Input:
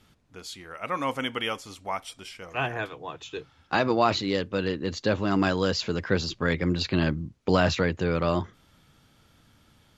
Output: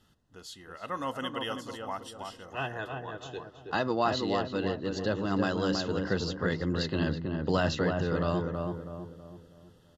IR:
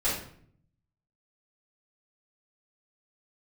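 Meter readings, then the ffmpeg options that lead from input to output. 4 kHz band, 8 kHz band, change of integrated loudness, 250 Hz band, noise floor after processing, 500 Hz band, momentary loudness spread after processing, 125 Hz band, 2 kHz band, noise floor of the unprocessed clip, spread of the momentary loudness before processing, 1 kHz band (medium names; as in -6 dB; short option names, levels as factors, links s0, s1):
-5.5 dB, -5.5 dB, -4.5 dB, -3.5 dB, -60 dBFS, -3.5 dB, 15 LU, -3.5 dB, -5.5 dB, -61 dBFS, 16 LU, -4.0 dB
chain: -filter_complex "[0:a]asuperstop=centerf=2300:order=8:qfactor=4.9,asplit=2[s0][s1];[s1]adelay=324,lowpass=f=1200:p=1,volume=0.708,asplit=2[s2][s3];[s3]adelay=324,lowpass=f=1200:p=1,volume=0.46,asplit=2[s4][s5];[s5]adelay=324,lowpass=f=1200:p=1,volume=0.46,asplit=2[s6][s7];[s7]adelay=324,lowpass=f=1200:p=1,volume=0.46,asplit=2[s8][s9];[s9]adelay=324,lowpass=f=1200:p=1,volume=0.46,asplit=2[s10][s11];[s11]adelay=324,lowpass=f=1200:p=1,volume=0.46[s12];[s0][s2][s4][s6][s8][s10][s12]amix=inputs=7:normalize=0,volume=0.531"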